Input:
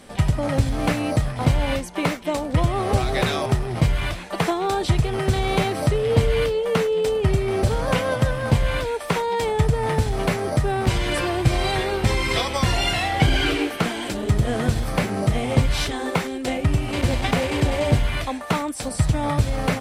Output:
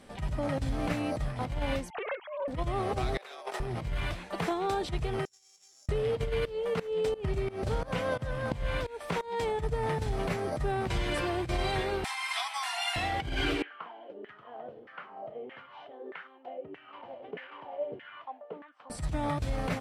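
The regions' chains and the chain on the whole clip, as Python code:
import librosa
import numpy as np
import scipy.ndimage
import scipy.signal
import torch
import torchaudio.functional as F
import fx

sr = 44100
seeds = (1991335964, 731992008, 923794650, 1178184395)

y = fx.chain(x, sr, fx.sine_speech(),
    fx.over_compress(threshold_db=-28.0, ratio=-1.0),
    fx.doppler_dist(depth_ms=0.15), at=(1.9, 2.48))
y = fx.chain(y, sr, fx.highpass(hz=460.0, slope=24),
    fx.over_compress(threshold_db=-32.0, ratio=-0.5), at=(3.17, 3.6))
y = fx.chain(y, sr, fx.sample_sort(block=8),
    fx.over_compress(threshold_db=-25.0, ratio=-1.0),
    fx.bandpass_q(hz=7100.0, q=11.0), at=(5.25, 5.89))
y = fx.chain(y, sr, fx.volume_shaper(bpm=87, per_beat=2, depth_db=-21, release_ms=262.0, shape='fast start'),
    fx.doppler_dist(depth_ms=0.11), at=(6.45, 9.5))
y = fx.chain(y, sr, fx.steep_highpass(hz=700.0, slope=96),
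    fx.peak_eq(hz=10000.0, db=8.5, octaves=0.35), at=(12.04, 12.96))
y = fx.chain(y, sr, fx.peak_eq(hz=3000.0, db=11.5, octaves=0.25),
    fx.filter_lfo_bandpass(shape='saw_down', hz=1.6, low_hz=360.0, high_hz=1900.0, q=5.5),
    fx.bandpass_edges(low_hz=150.0, high_hz=3900.0), at=(13.62, 18.9))
y = fx.over_compress(y, sr, threshold_db=-20.0, ratio=-0.5)
y = fx.high_shelf(y, sr, hz=5100.0, db=-6.0)
y = y * 10.0 ** (-8.5 / 20.0)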